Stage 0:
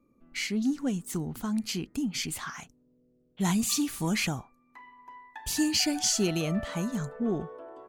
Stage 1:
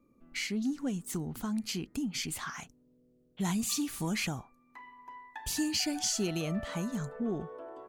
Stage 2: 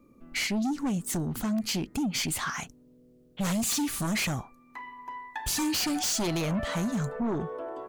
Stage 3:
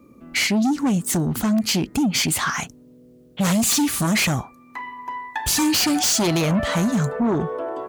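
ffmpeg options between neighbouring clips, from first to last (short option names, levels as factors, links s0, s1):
-af "acompressor=threshold=0.0141:ratio=1.5"
-af "aeval=exprs='0.106*sin(PI/2*3.16*val(0)/0.106)':c=same,volume=0.531"
-af "highpass=53,volume=2.82"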